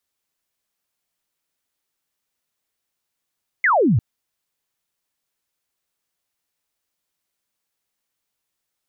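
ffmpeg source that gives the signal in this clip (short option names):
-f lavfi -i "aevalsrc='0.224*clip(t/0.002,0,1)*clip((0.35-t)/0.002,0,1)*sin(2*PI*2200*0.35/log(94/2200)*(exp(log(94/2200)*t/0.35)-1))':d=0.35:s=44100"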